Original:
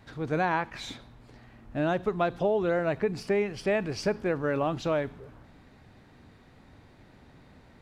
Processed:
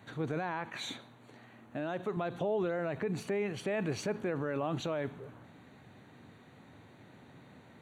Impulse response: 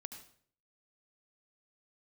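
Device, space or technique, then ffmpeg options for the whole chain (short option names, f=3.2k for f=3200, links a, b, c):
PA system with an anti-feedback notch: -filter_complex "[0:a]highpass=f=100:w=0.5412,highpass=f=100:w=1.3066,asuperstop=centerf=5100:order=4:qfactor=3.8,alimiter=level_in=0.5dB:limit=-24dB:level=0:latency=1:release=45,volume=-0.5dB,asettb=1/sr,asplit=3[a][b][c];[a]atrim=end=0.714[d];[b]atrim=start=0.71:end=2.17,asetpts=PTS-STARTPTS,afade=t=in:d=0.004:c=qsin,afade=t=out:st=1.456:d=0.004:c=qsin,highpass=f=200:p=1[e];[c]atrim=start=2.166[f];[d][e]acrossfade=d=0.004:c1=hsin:c2=qsin[g];[g][f]acrossfade=d=0.004:c1=qsin:c2=hsin"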